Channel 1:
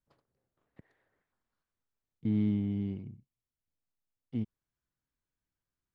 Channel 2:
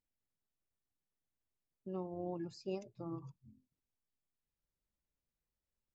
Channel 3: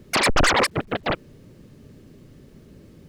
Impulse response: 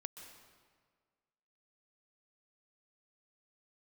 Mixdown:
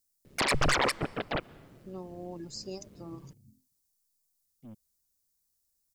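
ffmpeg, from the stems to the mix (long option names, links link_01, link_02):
-filter_complex "[0:a]asoftclip=type=tanh:threshold=-36.5dB,aphaser=in_gain=1:out_gain=1:delay=4.6:decay=0.39:speed=0.9:type=sinusoidal,adelay=300,volume=-11.5dB[link_01];[1:a]aexciter=amount=6.8:drive=5.8:freq=4200,volume=-0.5dB,asplit=2[link_02][link_03];[2:a]tremolo=f=140:d=0.71,adelay=250,volume=-6dB,asplit=2[link_04][link_05];[link_05]volume=-11dB[link_06];[link_03]apad=whole_len=275591[link_07];[link_01][link_07]sidechaincompress=threshold=-49dB:ratio=8:attack=16:release=423[link_08];[3:a]atrim=start_sample=2205[link_09];[link_06][link_09]afir=irnorm=-1:irlink=0[link_10];[link_08][link_02][link_04][link_10]amix=inputs=4:normalize=0"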